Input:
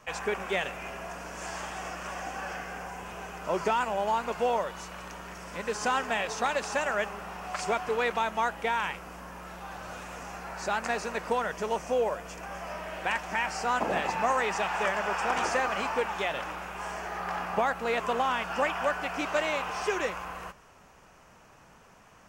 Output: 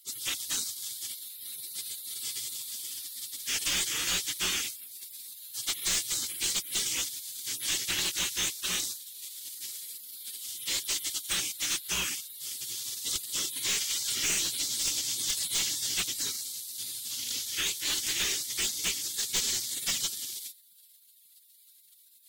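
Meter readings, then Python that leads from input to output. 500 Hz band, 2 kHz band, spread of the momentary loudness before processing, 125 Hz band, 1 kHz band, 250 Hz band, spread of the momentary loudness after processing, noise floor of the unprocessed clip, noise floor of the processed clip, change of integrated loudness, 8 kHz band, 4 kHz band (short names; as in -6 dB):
-21.0 dB, -6.5 dB, 12 LU, -6.0 dB, -20.5 dB, -10.0 dB, 11 LU, -56 dBFS, -59 dBFS, +0.5 dB, +15.5 dB, +10.5 dB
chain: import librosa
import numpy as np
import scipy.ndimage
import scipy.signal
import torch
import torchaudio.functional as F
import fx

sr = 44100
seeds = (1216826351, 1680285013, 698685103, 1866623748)

y = fx.high_shelf(x, sr, hz=2800.0, db=9.5)
y = fx.spec_gate(y, sr, threshold_db=-25, keep='weak')
y = fx.curve_eq(y, sr, hz=(390.0, 630.0, 3400.0), db=(0, -10, 6))
y = fx.cheby_harmonics(y, sr, harmonics=(4,), levels_db=(-17,), full_scale_db=-18.0)
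y = scipy.signal.sosfilt(scipy.signal.butter(2, 64.0, 'highpass', fs=sr, output='sos'), y)
y = np.clip(y, -10.0 ** (-33.0 / 20.0), 10.0 ** (-33.0 / 20.0))
y = y * librosa.db_to_amplitude(9.0)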